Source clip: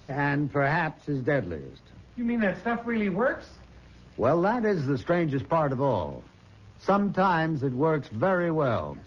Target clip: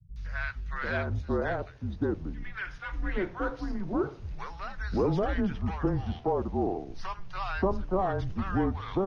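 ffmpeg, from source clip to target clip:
-filter_complex "[0:a]aresample=22050,aresample=44100,acrossover=split=190|1300[a][b][c];[c]adelay=160[d];[b]adelay=740[e];[a][e][d]amix=inputs=3:normalize=0,afreqshift=-190,volume=-2dB"

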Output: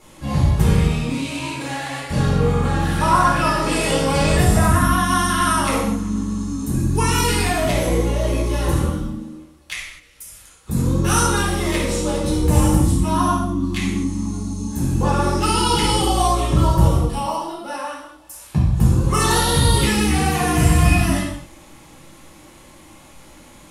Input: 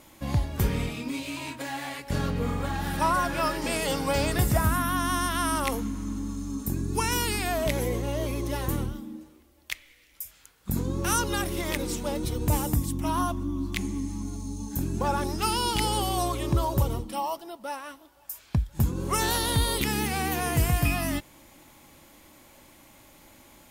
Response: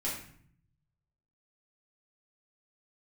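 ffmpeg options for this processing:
-filter_complex "[1:a]atrim=start_sample=2205,atrim=end_sample=6615,asetrate=24255,aresample=44100[a];[0:a][a]afir=irnorm=-1:irlink=0"

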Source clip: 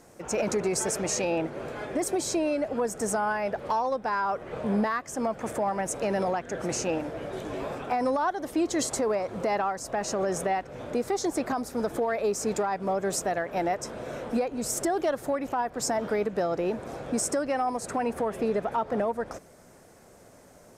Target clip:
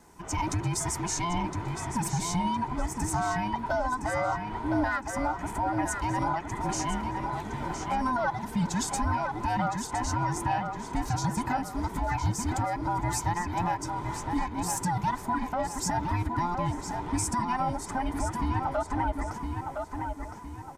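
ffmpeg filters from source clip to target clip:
-filter_complex "[0:a]afftfilt=real='real(if(between(b,1,1008),(2*floor((b-1)/24)+1)*24-b,b),0)':imag='imag(if(between(b,1,1008),(2*floor((b-1)/24)+1)*24-b,b),0)*if(between(b,1,1008),-1,1)':win_size=2048:overlap=0.75,adynamicequalizer=threshold=0.00141:dfrequency=2800:dqfactor=4.8:tfrequency=2800:tqfactor=4.8:attack=5:release=100:ratio=0.375:range=1.5:mode=cutabove:tftype=bell,asplit=2[a][b];[b]adelay=1013,lowpass=f=4.9k:p=1,volume=-5dB,asplit=2[c][d];[d]adelay=1013,lowpass=f=4.9k:p=1,volume=0.43,asplit=2[e][f];[f]adelay=1013,lowpass=f=4.9k:p=1,volume=0.43,asplit=2[g][h];[h]adelay=1013,lowpass=f=4.9k:p=1,volume=0.43,asplit=2[i][j];[j]adelay=1013,lowpass=f=4.9k:p=1,volume=0.43[k];[c][e][g][i][k]amix=inputs=5:normalize=0[l];[a][l]amix=inputs=2:normalize=0,volume=-2dB"

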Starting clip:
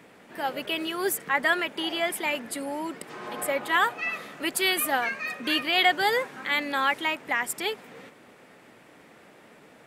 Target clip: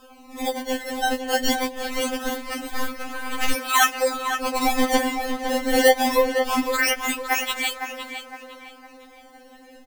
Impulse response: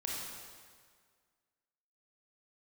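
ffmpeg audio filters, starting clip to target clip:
-filter_complex "[0:a]lowshelf=f=200:g=-10,bandreject=f=60:t=h:w=6,bandreject=f=120:t=h:w=6,bandreject=f=180:t=h:w=6,bandreject=f=240:t=h:w=6,bandreject=f=300:t=h:w=6,bandreject=f=360:t=h:w=6,acrossover=split=260|1500[a][b][c];[a]acompressor=threshold=-58dB:ratio=6[d];[d][b][c]amix=inputs=3:normalize=0,acrusher=samples=21:mix=1:aa=0.000001:lfo=1:lforange=33.6:lforate=0.23,asplit=2[e][f];[f]adelay=509,lowpass=f=3.2k:p=1,volume=-7dB,asplit=2[g][h];[h]adelay=509,lowpass=f=3.2k:p=1,volume=0.41,asplit=2[i][j];[j]adelay=509,lowpass=f=3.2k:p=1,volume=0.41,asplit=2[k][l];[l]adelay=509,lowpass=f=3.2k:p=1,volume=0.41,asplit=2[m][n];[n]adelay=509,lowpass=f=3.2k:p=1,volume=0.41[o];[g][i][k][m][o]amix=inputs=5:normalize=0[p];[e][p]amix=inputs=2:normalize=0,acrusher=bits=6:mode=log:mix=0:aa=0.000001,asettb=1/sr,asplit=3[q][r][s];[q]atrim=end=2.734[t];[r]atrim=start=2.73:end=3.53,asetpts=PTS-STARTPTS,afade=t=in:d=0.004:c=qsin,afade=t=out:st=0.796:d=0.004:c=qsin,aeval=exprs='0.158*(cos(1*acos(clip(val(0)/0.158,-1,1)))-cos(1*PI/2))+0.0562*(cos(4*acos(clip(val(0)/0.158,-1,1)))-cos(4*PI/2))':c=same[u];[s]atrim=start=3.526[v];[t][u]acrossfade=d=0.004:c1=hsin:c2=qsin[w];[w][v]acrossfade=d=0.004:c1=qsin:c2=hsin,afftfilt=real='re*3.46*eq(mod(b,12),0)':imag='im*3.46*eq(mod(b,12),0)':win_size=2048:overlap=0.75,volume=8dB"

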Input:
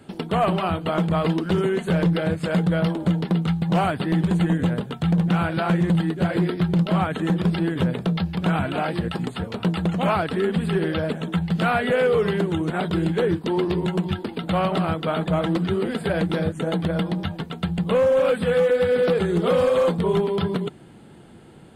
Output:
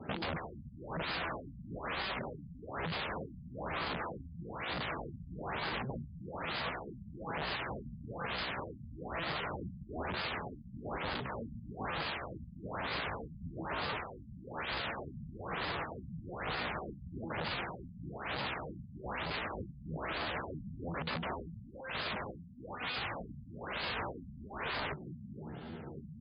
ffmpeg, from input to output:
-filter_complex "[0:a]alimiter=limit=-19.5dB:level=0:latency=1:release=23,bandreject=f=50:t=h:w=6,bandreject=f=100:t=h:w=6,bandreject=f=150:t=h:w=6,asplit=2[a][b];[b]aecho=0:1:13|30:0.316|0.398[c];[a][c]amix=inputs=2:normalize=0,aeval=exprs='(mod(23.7*val(0)+1,2)-1)/23.7':c=same,acompressor=threshold=-36dB:ratio=6,highpass=f=41:w=0.5412,highpass=f=41:w=1.3066,atempo=0.83,equalizer=f=310:t=o:w=0.77:g=-3,afftfilt=real='re*lt(b*sr/1024,230*pow(5100/230,0.5+0.5*sin(2*PI*1.1*pts/sr)))':imag='im*lt(b*sr/1024,230*pow(5100/230,0.5+0.5*sin(2*PI*1.1*pts/sr)))':win_size=1024:overlap=0.75,volume=2.5dB"

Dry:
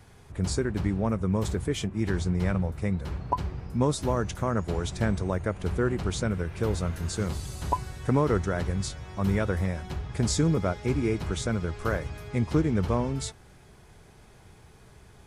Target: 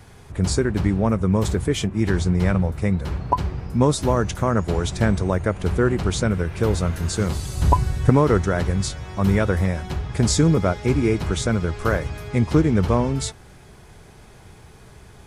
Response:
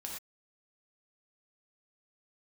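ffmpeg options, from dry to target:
-filter_complex "[0:a]asettb=1/sr,asplit=3[a][b][c];[a]atrim=end=7.574[d];[b]atrim=start=7.57:end=8.1,asetpts=PTS-STARTPTS,afade=t=in:d=0.004:c=qsin,afade=t=out:st=0.526:d=0.004:c=qsin,lowshelf=f=230:g=10[e];[c]atrim=start=8.096[f];[d][e]acrossfade=d=0.004:c1=hsin:c2=qsin[g];[g][f]acrossfade=d=0.004:c1=qsin:c2=hsin,volume=7dB"

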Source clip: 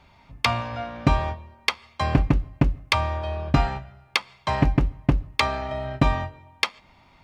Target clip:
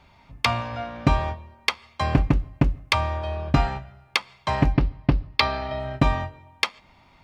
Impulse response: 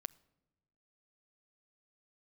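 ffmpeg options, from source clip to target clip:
-filter_complex "[0:a]asettb=1/sr,asplit=3[a][b][c];[a]atrim=end=4.744[d];[b]atrim=start=4.74:end=5.8,asetpts=PTS-STARTPTS,afade=t=in:d=0.004:c=qsin,afade=t=out:st=1.056:d=0.004:c=qsin,highshelf=f=5.8k:t=q:w=3:g=-6.5[e];[c]atrim=start=5.796[f];[d][e]acrossfade=d=0.004:c1=hsin:c2=qsin[g];[g][f]acrossfade=d=0.004:c1=qsin:c2=hsin"

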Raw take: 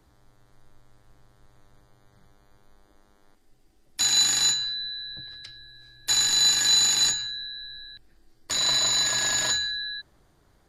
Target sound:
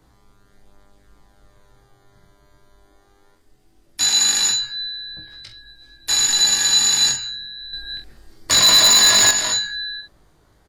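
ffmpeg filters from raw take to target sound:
-filter_complex "[0:a]flanger=delay=19:depth=4.1:speed=0.2,asplit=2[a][b];[b]adelay=45,volume=-9.5dB[c];[a][c]amix=inputs=2:normalize=0,asettb=1/sr,asplit=3[d][e][f];[d]atrim=end=7.734[g];[e]atrim=start=7.73:end=9.31,asetpts=PTS-STARTPTS,afade=t=in:d=0.004:c=qsin,afade=t=out:st=1.576:d=0.004:c=qsin,aeval=exprs='0.178*sin(PI/2*1.78*val(0)/0.178)':c=same[h];[f]atrim=start=9.306[i];[g][h]acrossfade=d=0.004:c1=hsin:c2=qsin[j];[j][i]acrossfade=d=0.004:c1=qsin:c2=hsin,volume=7.5dB"

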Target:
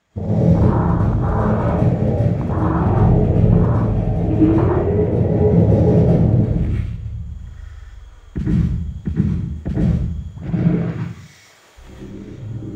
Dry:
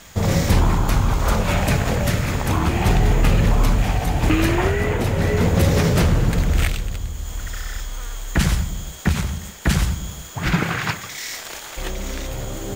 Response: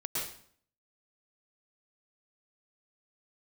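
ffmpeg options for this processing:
-filter_complex "[0:a]highpass=61,aemphasis=mode=reproduction:type=75fm,afwtdn=0.1,asettb=1/sr,asplit=3[a][b][c];[a]atrim=end=10.924[d];[b]atrim=start=10.92:end=11.97,asetpts=PTS-STARTPTS,afade=t=in:d=0.004:c=qsin,afade=t=out:st=1.046:d=0.004:c=qsin,highshelf=f=5.6k:g=8.5[e];[c]atrim=start=11.966[f];[d][e]acrossfade=d=0.004:c1=hsin:c2=qsin[g];[g][f]acrossfade=d=0.004:c1=qsin:c2=hsin[h];[1:a]atrim=start_sample=2205[i];[h][i]afir=irnorm=-1:irlink=0,volume=-1dB"

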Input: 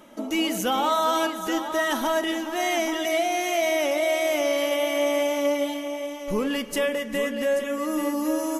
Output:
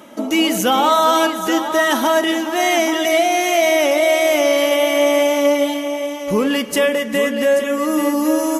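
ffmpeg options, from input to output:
-af "highpass=80,volume=8.5dB"

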